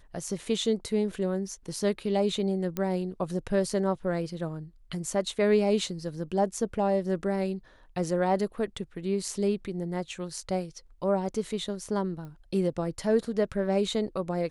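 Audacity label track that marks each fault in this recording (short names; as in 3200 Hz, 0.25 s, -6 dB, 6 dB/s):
2.770000	2.770000	pop -17 dBFS
12.250000	12.250000	pop -32 dBFS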